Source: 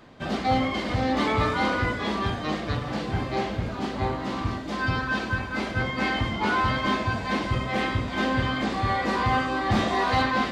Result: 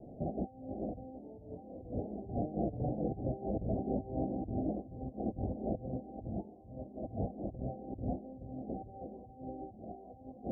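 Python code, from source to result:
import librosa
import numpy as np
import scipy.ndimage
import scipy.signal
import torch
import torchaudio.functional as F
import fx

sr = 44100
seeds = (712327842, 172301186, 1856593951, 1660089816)

y = fx.over_compress(x, sr, threshold_db=-32.0, ratio=-0.5)
y = scipy.signal.sosfilt(scipy.signal.butter(16, 770.0, 'lowpass', fs=sr, output='sos'), y)
y = y * librosa.db_to_amplitude(-5.0)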